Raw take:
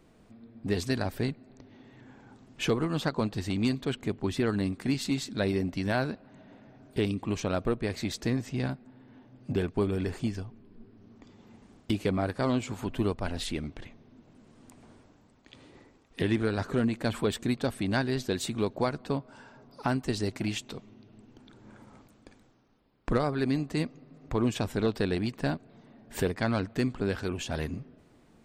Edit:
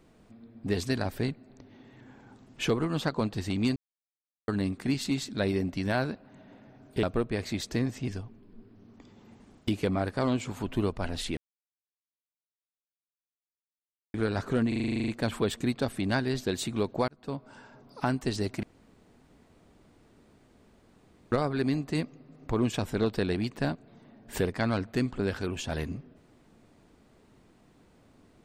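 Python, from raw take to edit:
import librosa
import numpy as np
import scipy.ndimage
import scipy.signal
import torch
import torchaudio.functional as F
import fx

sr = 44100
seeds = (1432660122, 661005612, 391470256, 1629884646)

y = fx.edit(x, sr, fx.silence(start_s=3.76, length_s=0.72),
    fx.cut(start_s=7.03, length_s=0.51),
    fx.cut(start_s=8.59, length_s=1.71),
    fx.silence(start_s=13.59, length_s=2.77),
    fx.stutter(start_s=16.9, slice_s=0.04, count=11),
    fx.fade_in_span(start_s=18.9, length_s=0.41),
    fx.room_tone_fill(start_s=20.45, length_s=2.69), tone=tone)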